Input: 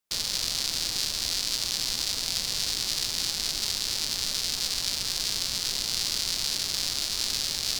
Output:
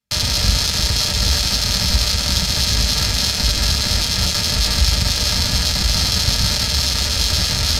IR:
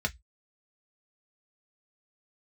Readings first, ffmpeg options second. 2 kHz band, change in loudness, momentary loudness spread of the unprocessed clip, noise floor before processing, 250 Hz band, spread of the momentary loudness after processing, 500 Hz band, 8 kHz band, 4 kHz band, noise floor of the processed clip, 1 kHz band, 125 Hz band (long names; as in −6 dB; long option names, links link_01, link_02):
+12.5 dB, +10.0 dB, 1 LU, −32 dBFS, +18.0 dB, 1 LU, +15.0 dB, +8.0 dB, +10.0 dB, −21 dBFS, +14.5 dB, +26.0 dB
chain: -filter_complex "[0:a]bass=frequency=250:gain=15,treble=frequency=4000:gain=3,aeval=exprs='0.355*(cos(1*acos(clip(val(0)/0.355,-1,1)))-cos(1*PI/2))+0.0501*(cos(2*acos(clip(val(0)/0.355,-1,1)))-cos(2*PI/2))+0.0316*(cos(7*acos(clip(val(0)/0.355,-1,1)))-cos(7*PI/2))+0.0316*(cos(8*acos(clip(val(0)/0.355,-1,1)))-cos(8*PI/2))':channel_layout=same[link_01];[1:a]atrim=start_sample=2205,asetrate=41013,aresample=44100[link_02];[link_01][link_02]afir=irnorm=-1:irlink=0,aresample=32000,aresample=44100,volume=3dB"